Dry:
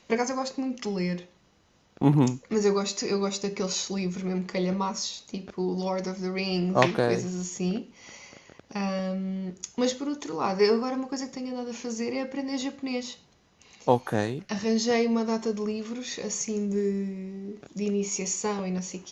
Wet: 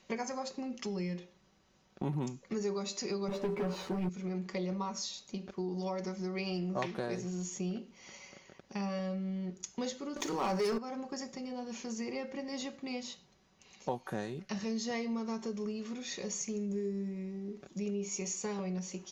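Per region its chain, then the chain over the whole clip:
0:03.28–0:04.09: low-pass filter 1,500 Hz + leveller curve on the samples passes 3 + double-tracking delay 12 ms −2.5 dB
0:10.16–0:10.78: mains-hum notches 50/100/150/200/250/300/350/400/450 Hz + leveller curve on the samples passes 3
whole clip: comb filter 5.3 ms, depth 41%; downward compressor 2.5 to 1, threshold −29 dBFS; level −6 dB

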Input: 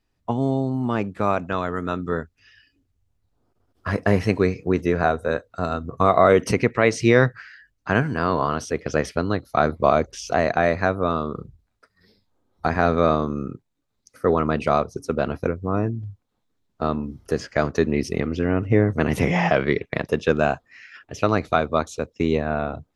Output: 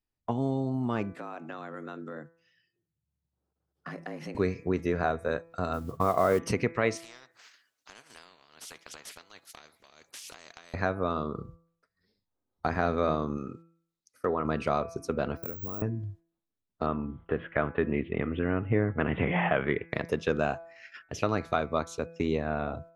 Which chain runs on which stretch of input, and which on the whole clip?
0:01.13–0:04.35: frequency shifter +69 Hz + downward compressor 4 to 1, threshold −36 dBFS
0:05.73–0:06.39: low-pass filter 2,300 Hz + noise that follows the level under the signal 26 dB
0:06.97–0:10.74: high-pass filter 630 Hz + downward compressor 10 to 1, threshold −36 dBFS + every bin compressed towards the loudest bin 4 to 1
0:13.37–0:14.45: treble cut that deepens with the level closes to 1,600 Hz, closed at −17 dBFS + spectral tilt +2 dB per octave
0:15.37–0:15.82: downward compressor 5 to 1, threshold −32 dBFS + bad sample-rate conversion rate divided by 2×, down filtered, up zero stuff + multiband upward and downward expander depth 70%
0:16.86–0:19.90: Butterworth low-pass 3,500 Hz 96 dB per octave + parametric band 1,400 Hz +4 dB 0.97 octaves
whole clip: noise gate −44 dBFS, range −14 dB; hum removal 166.6 Hz, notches 15; downward compressor 1.5 to 1, threshold −31 dBFS; level −2 dB

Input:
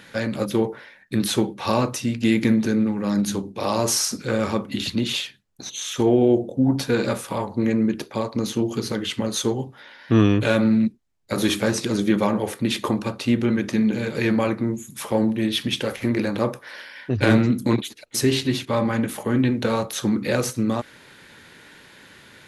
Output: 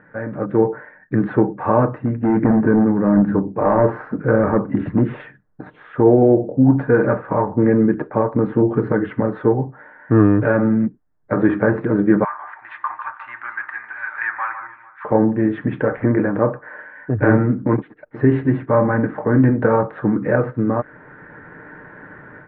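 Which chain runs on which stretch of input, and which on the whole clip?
0:01.98–0:05.20: high-shelf EQ 3,000 Hz −11.5 dB + gain into a clipping stage and back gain 16.5 dB
0:12.24–0:15.05: inverse Chebyshev high-pass filter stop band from 520 Hz + delay that swaps between a low-pass and a high-pass 149 ms, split 2,000 Hz, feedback 51%, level −9 dB
whole clip: elliptic low-pass filter 1,700 Hz, stop band 80 dB; comb filter 6.6 ms, depth 36%; automatic gain control gain up to 11.5 dB; level −1 dB

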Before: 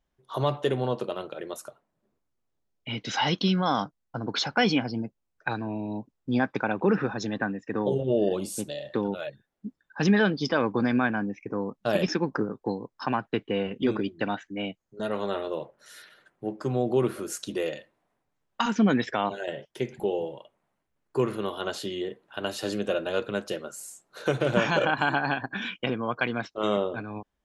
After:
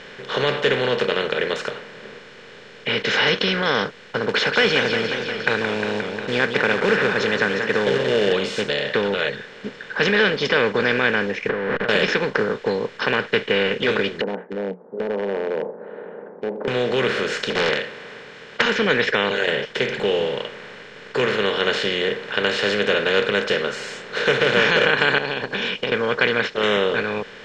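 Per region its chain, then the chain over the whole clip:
0:04.29–0:08.33: floating-point word with a short mantissa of 4 bits + feedback echo with a swinging delay time 178 ms, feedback 54%, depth 209 cents, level −14 dB
0:11.49–0:11.89: converter with a step at zero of −31.5 dBFS + Chebyshev low-pass filter 1,700 Hz, order 4 + compressor whose output falls as the input rises −36 dBFS
0:14.21–0:16.68: Chebyshev band-pass filter 180–890 Hz, order 5 + downward compressor 2 to 1, threshold −35 dBFS
0:17.50–0:18.62: high-pass filter 110 Hz 6 dB per octave + highs frequency-modulated by the lows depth 0.8 ms
0:25.18–0:25.92: flat-topped bell 1,600 Hz −15.5 dB 1 octave + downward compressor 4 to 1, threshold −37 dBFS
whole clip: compressor on every frequency bin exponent 0.4; drawn EQ curve 140 Hz 0 dB, 320 Hz −5 dB, 470 Hz +11 dB, 690 Hz −4 dB, 1,800 Hz +11 dB, 2,600 Hz +11 dB, 7,400 Hz −2 dB, 11,000 Hz −21 dB; level −5 dB

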